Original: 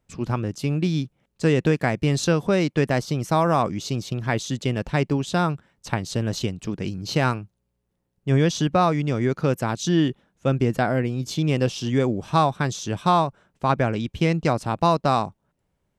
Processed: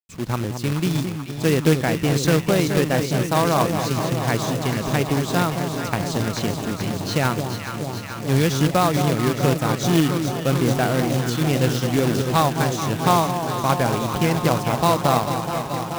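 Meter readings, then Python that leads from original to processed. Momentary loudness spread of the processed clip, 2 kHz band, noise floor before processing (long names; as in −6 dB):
7 LU, +3.0 dB, −75 dBFS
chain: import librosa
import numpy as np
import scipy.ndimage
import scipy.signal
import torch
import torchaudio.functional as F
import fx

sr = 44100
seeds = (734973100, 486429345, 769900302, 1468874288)

y = fx.echo_alternate(x, sr, ms=216, hz=950.0, feedback_pct=89, wet_db=-6.5)
y = fx.quant_companded(y, sr, bits=4)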